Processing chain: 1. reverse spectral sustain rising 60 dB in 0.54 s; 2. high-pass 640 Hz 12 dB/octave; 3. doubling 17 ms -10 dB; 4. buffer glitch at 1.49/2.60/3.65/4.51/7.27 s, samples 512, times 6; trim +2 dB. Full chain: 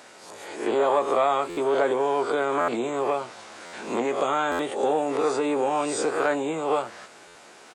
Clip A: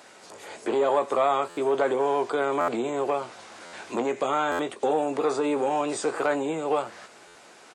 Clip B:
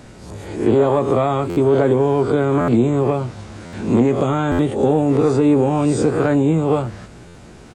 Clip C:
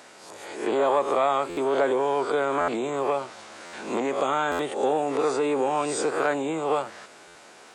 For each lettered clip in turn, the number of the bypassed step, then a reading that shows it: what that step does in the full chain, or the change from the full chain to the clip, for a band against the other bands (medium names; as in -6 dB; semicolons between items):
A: 1, 8 kHz band -1.5 dB; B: 2, 125 Hz band +25.5 dB; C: 3, 125 Hz band +2.0 dB